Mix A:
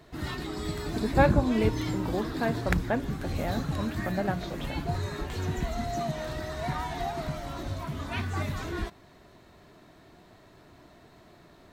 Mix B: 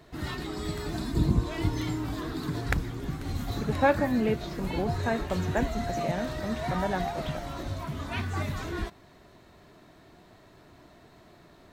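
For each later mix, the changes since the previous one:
speech: entry +2.65 s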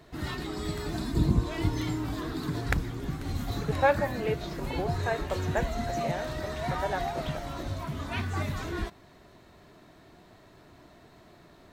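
speech: add high-pass filter 370 Hz 24 dB per octave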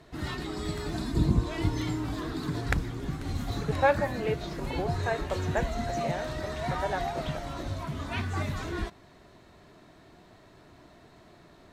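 master: add low-pass filter 12,000 Hz 12 dB per octave

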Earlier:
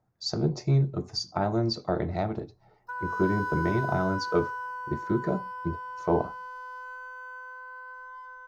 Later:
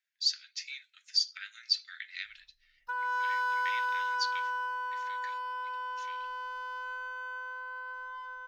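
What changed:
speech: add Butterworth high-pass 1,600 Hz 72 dB per octave
master: add parametric band 3,000 Hz +13.5 dB 0.93 octaves

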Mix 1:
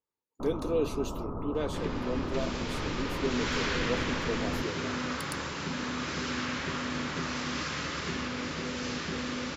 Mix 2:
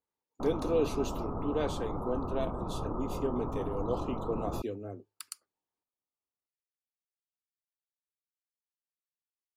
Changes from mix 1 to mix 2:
second sound: muted
master: add parametric band 770 Hz +6 dB 0.34 octaves

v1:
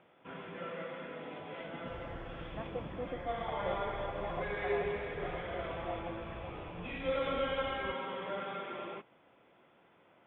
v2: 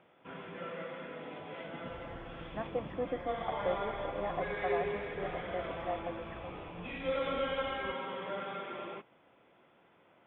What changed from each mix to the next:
speech +5.5 dB
second sound −3.5 dB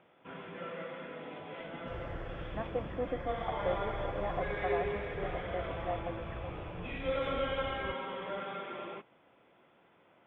second sound +8.5 dB

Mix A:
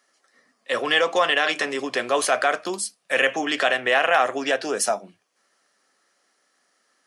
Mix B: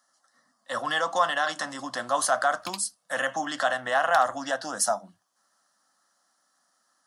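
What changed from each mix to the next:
speech: add phaser with its sweep stopped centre 1,000 Hz, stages 4
background +9.5 dB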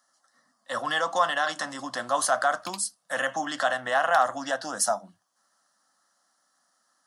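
background −3.0 dB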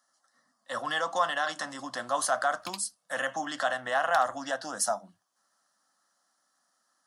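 speech −3.5 dB

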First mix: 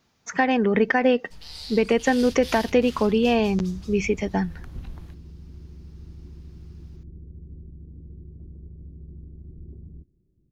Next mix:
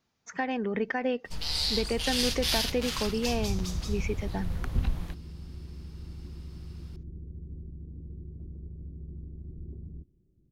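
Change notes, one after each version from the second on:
speech −10.0 dB
first sound +9.5 dB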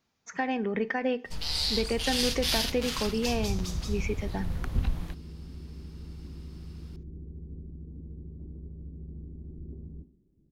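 reverb: on, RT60 0.50 s

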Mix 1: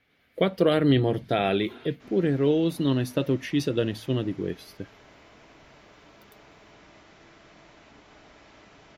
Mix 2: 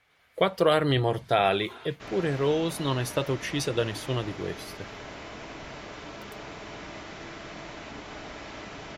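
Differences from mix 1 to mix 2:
speech: add octave-band graphic EQ 250/1,000/8,000 Hz −10/+8/+10 dB
background +12.0 dB

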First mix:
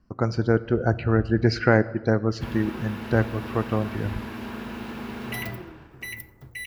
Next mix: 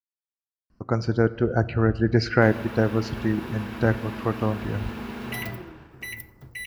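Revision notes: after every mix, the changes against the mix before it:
speech: entry +0.70 s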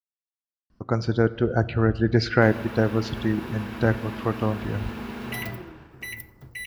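speech: add parametric band 3,500 Hz +14.5 dB 0.22 octaves

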